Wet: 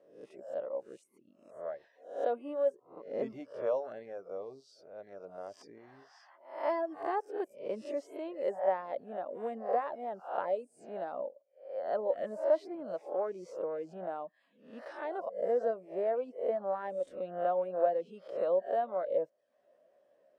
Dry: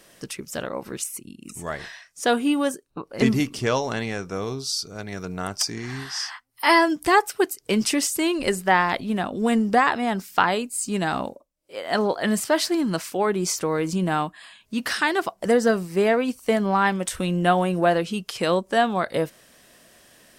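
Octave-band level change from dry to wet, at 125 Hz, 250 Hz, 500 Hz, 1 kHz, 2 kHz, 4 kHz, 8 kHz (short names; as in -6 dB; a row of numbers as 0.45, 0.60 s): under -25 dB, -22.5 dB, -7.5 dB, -14.0 dB, -25.0 dB, under -30 dB, under -35 dB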